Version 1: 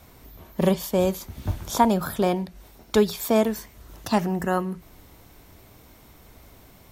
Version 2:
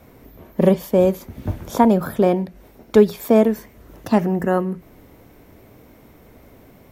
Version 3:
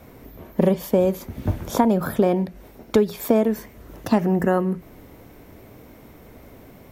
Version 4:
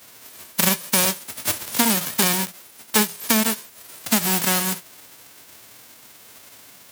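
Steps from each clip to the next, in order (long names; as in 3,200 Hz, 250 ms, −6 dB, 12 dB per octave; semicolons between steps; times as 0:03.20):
octave-band graphic EQ 125/250/500/2,000/4,000/8,000 Hz +4/+7/+8/+4/−4/−4 dB; level −1.5 dB
downward compressor 5 to 1, threshold −16 dBFS, peak gain reduction 9 dB; level +2 dB
spectral envelope flattened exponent 0.1; high-pass filter 84 Hz 24 dB per octave; level −1 dB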